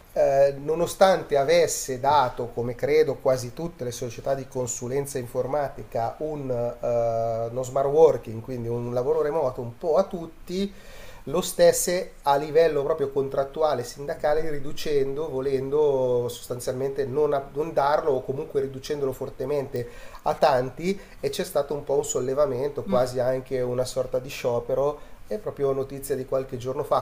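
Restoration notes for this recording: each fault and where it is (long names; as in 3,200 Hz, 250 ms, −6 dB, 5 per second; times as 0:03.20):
0:19.76: click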